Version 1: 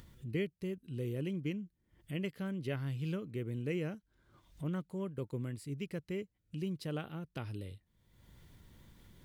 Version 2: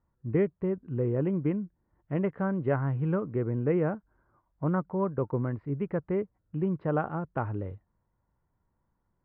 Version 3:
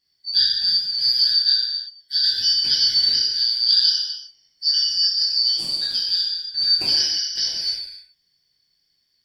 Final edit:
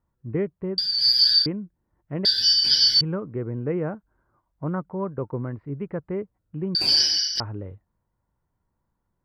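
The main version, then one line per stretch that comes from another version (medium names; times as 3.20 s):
2
0.78–1.46 s: from 3
2.25–3.01 s: from 3
6.75–7.40 s: from 3
not used: 1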